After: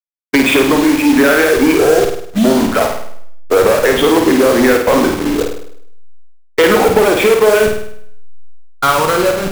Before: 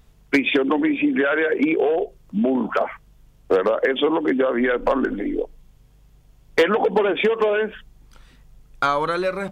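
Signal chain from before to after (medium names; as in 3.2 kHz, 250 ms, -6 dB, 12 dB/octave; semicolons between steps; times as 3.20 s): send-on-delta sampling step -24 dBFS; reverse; upward compressor, threshold -26 dBFS; reverse; waveshaping leveller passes 2; expander -16 dBFS; flutter echo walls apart 8.8 m, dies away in 0.65 s; trim +4 dB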